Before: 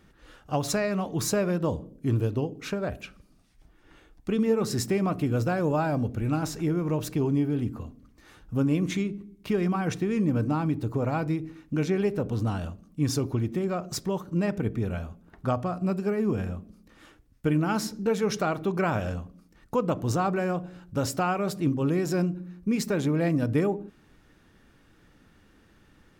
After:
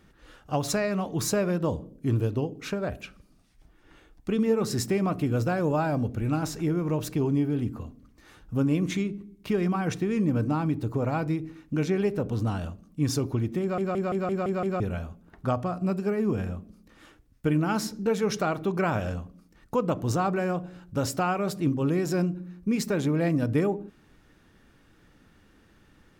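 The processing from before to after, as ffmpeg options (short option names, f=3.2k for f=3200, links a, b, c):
-filter_complex "[0:a]asplit=8[a][b][c][d][e][f][g][h];[a]atrim=end=13.782[i];[b]atrim=start=13.608:end=13.782[j];[c]atrim=start=13.608:end=13.782[k];[d]atrim=start=13.608:end=13.782[l];[e]atrim=start=13.608:end=13.782[m];[f]atrim=start=13.608:end=13.782[n];[g]atrim=start=13.608:end=13.782[o];[h]atrim=start=14.798[p];[i][j]acrossfade=d=0.004:c1=hsin:c2=hsin[q];[q][k]acrossfade=d=0.004:c1=hsin:c2=hsin[r];[r][l]acrossfade=d=0.004:c1=hsin:c2=hsin[s];[s][m]acrossfade=d=0.004:c1=hsin:c2=hsin[t];[t][n]acrossfade=d=0.004:c1=hsin:c2=hsin[u];[u][o]acrossfade=d=0.004:c1=hsin:c2=hsin[v];[v][p]acrossfade=d=0.004:c1=hsin:c2=hsin"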